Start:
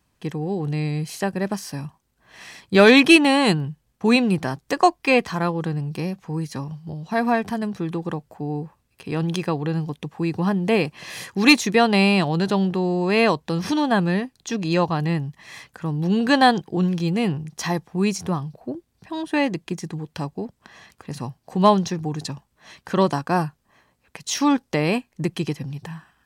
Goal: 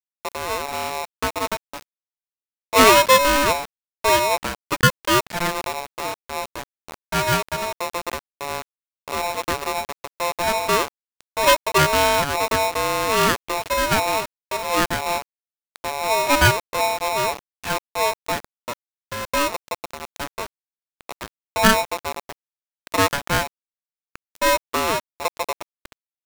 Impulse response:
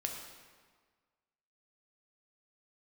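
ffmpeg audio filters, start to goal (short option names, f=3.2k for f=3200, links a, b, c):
-af "highpass=f=150:t=q:w=0.5412,highpass=f=150:t=q:w=1.307,lowpass=f=2.3k:t=q:w=0.5176,lowpass=f=2.3k:t=q:w=0.7071,lowpass=f=2.3k:t=q:w=1.932,afreqshift=-76,aeval=exprs='val(0)*gte(abs(val(0)),0.0422)':c=same,aeval=exprs='val(0)*sgn(sin(2*PI*780*n/s))':c=same"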